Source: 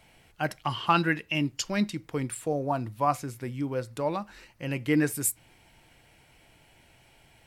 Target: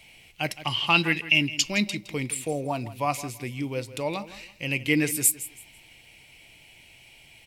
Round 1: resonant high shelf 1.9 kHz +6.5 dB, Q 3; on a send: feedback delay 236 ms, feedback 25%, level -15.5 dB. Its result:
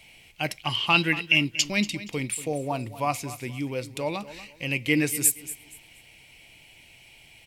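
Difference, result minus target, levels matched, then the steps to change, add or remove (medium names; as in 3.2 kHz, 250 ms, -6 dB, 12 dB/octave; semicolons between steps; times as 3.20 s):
echo 72 ms late
change: feedback delay 164 ms, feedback 25%, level -15.5 dB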